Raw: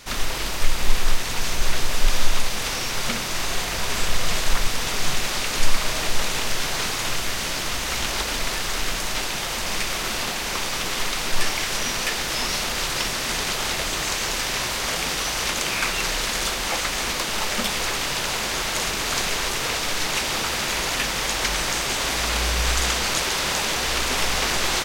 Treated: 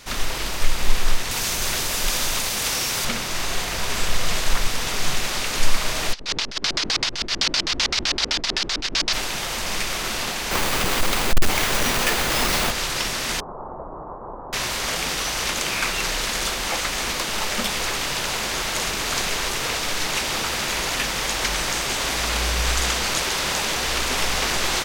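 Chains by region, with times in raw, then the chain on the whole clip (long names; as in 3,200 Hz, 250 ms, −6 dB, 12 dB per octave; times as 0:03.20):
0:01.31–0:03.05: high-pass filter 52 Hz 6 dB per octave + high-shelf EQ 5,800 Hz +9 dB
0:06.13–0:09.13: auto-filter low-pass square 7.8 Hz 320–4,800 Hz + compressor whose output falls as the input rises −26 dBFS + tilt shelving filter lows −5.5 dB, about 710 Hz
0:10.51–0:12.71: each half-wave held at its own peak + notch filter 5,500 Hz, Q 29
0:13.40–0:14.53: Butterworth low-pass 1,100 Hz 48 dB per octave + low-shelf EQ 370 Hz −7.5 dB
whole clip: no processing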